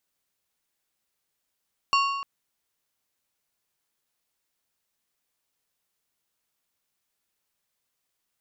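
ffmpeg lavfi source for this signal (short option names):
-f lavfi -i "aevalsrc='0.126*pow(10,-3*t/1.29)*sin(2*PI*1110*t)+0.0708*pow(10,-3*t/0.98)*sin(2*PI*2775*t)+0.0398*pow(10,-3*t/0.851)*sin(2*PI*4440*t)+0.0224*pow(10,-3*t/0.796)*sin(2*PI*5550*t)+0.0126*pow(10,-3*t/0.736)*sin(2*PI*7215*t)':d=0.3:s=44100"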